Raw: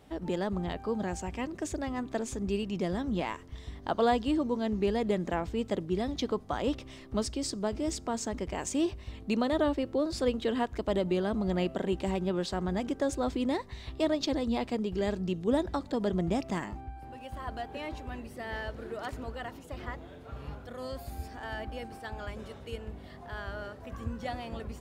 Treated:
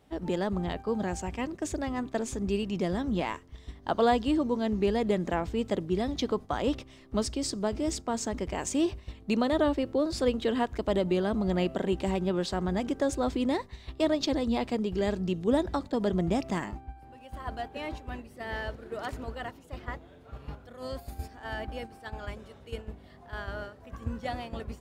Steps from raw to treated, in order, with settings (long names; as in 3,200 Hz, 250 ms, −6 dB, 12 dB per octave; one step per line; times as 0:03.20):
noise gate −39 dBFS, range −7 dB
level +2 dB